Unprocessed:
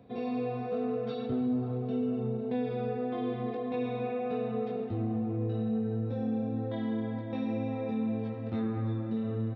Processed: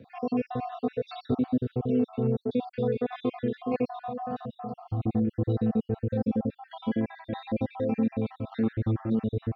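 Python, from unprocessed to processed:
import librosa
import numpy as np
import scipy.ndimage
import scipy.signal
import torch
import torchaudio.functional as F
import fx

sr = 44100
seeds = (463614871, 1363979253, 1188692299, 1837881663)

y = fx.spec_dropout(x, sr, seeds[0], share_pct=55)
y = fx.fixed_phaser(y, sr, hz=960.0, stages=4, at=(3.88, 5.01), fade=0.02)
y = fx.wow_flutter(y, sr, seeds[1], rate_hz=2.1, depth_cents=16.0)
y = F.gain(torch.from_numpy(y), 7.0).numpy()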